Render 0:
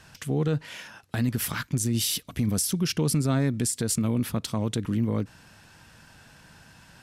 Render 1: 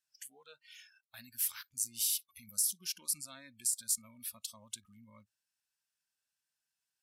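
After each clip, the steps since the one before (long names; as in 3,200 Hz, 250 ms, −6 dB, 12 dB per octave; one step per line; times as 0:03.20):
noise reduction from a noise print of the clip's start 24 dB
first-order pre-emphasis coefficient 0.97
level −4.5 dB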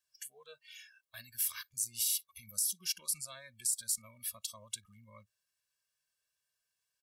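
comb filter 1.8 ms, depth 91%
brickwall limiter −21.5 dBFS, peak gain reduction 5.5 dB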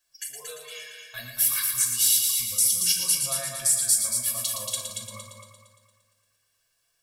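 echo machine with several playback heads 115 ms, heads first and second, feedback 49%, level −7 dB
convolution reverb RT60 0.40 s, pre-delay 3 ms, DRR −2 dB
level +8 dB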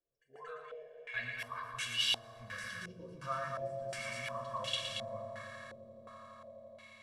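echo that builds up and dies away 84 ms, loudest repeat 8, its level −16 dB
low-pass on a step sequencer 2.8 Hz 450–2,900 Hz
level −6 dB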